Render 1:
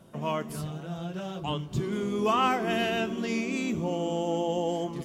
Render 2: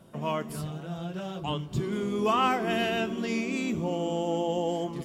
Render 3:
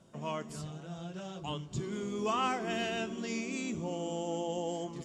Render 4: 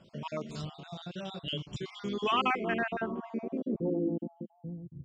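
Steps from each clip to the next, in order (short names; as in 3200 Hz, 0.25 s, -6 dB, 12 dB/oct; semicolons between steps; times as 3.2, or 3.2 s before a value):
notch 6200 Hz, Q 16
synth low-pass 7000 Hz, resonance Q 2.8; gain -7 dB
random spectral dropouts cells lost 40%; low-pass sweep 4100 Hz -> 100 Hz, 2.08–5; gain +3 dB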